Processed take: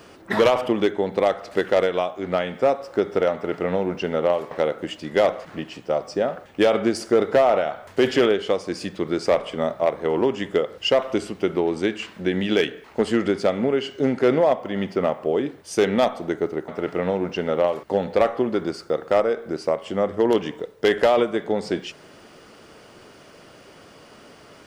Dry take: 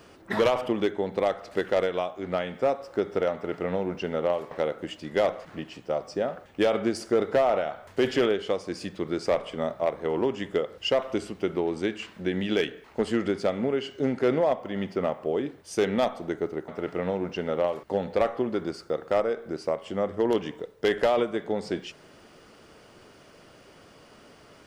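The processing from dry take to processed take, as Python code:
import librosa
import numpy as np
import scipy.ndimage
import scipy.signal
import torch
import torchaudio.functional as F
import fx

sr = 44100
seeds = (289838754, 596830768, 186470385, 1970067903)

y = fx.low_shelf(x, sr, hz=77.0, db=-6.0)
y = y * 10.0 ** (5.5 / 20.0)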